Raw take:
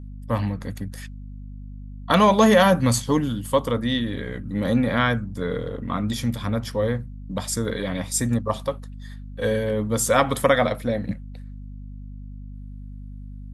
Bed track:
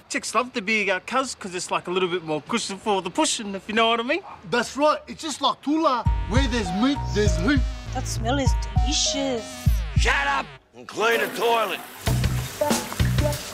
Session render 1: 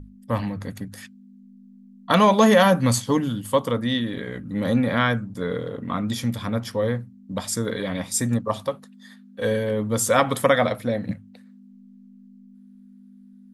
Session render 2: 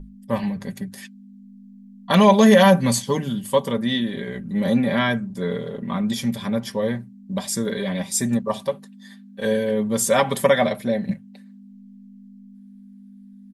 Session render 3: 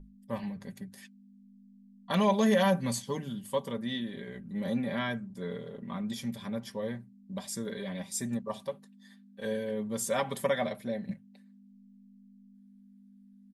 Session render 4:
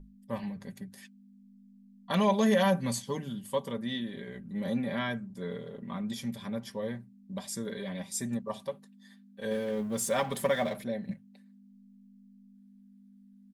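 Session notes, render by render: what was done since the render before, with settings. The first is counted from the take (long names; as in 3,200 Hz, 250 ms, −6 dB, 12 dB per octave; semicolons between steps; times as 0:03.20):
mains-hum notches 50/100/150 Hz
parametric band 1,300 Hz −11.5 dB 0.24 octaves; comb filter 5.1 ms, depth 72%
level −12 dB
0:09.51–0:10.84: mu-law and A-law mismatch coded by mu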